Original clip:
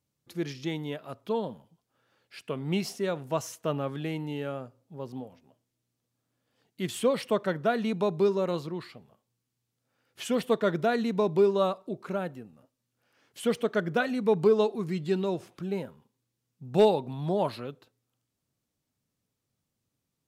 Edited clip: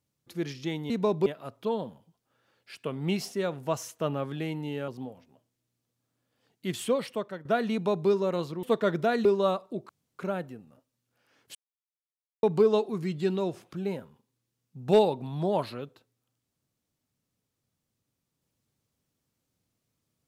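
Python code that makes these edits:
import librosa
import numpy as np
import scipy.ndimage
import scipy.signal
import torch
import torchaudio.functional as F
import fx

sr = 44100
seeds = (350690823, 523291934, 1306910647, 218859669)

y = fx.edit(x, sr, fx.cut(start_s=4.52, length_s=0.51),
    fx.fade_out_to(start_s=6.94, length_s=0.66, floor_db=-14.5),
    fx.cut(start_s=8.78, length_s=1.65),
    fx.move(start_s=11.05, length_s=0.36, to_s=0.9),
    fx.insert_room_tone(at_s=12.05, length_s=0.3),
    fx.silence(start_s=13.41, length_s=0.88), tone=tone)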